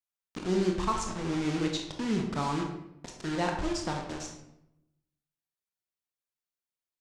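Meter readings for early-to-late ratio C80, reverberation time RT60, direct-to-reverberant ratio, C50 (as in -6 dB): 7.5 dB, 0.85 s, 1.5 dB, 4.5 dB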